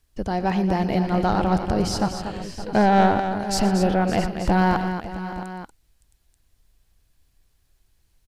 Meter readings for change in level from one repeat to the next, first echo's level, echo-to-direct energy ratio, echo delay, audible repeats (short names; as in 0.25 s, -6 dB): no steady repeat, -16.0 dB, -6.0 dB, 0.118 s, 5